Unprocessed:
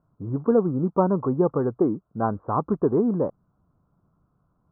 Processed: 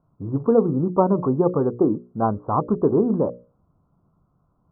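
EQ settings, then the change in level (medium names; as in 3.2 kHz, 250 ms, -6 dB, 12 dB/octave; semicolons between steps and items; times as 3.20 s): low-pass 1.3 kHz 24 dB/octave; hum notches 60/120/180/240/300/360/420/480/540/600 Hz; +3.5 dB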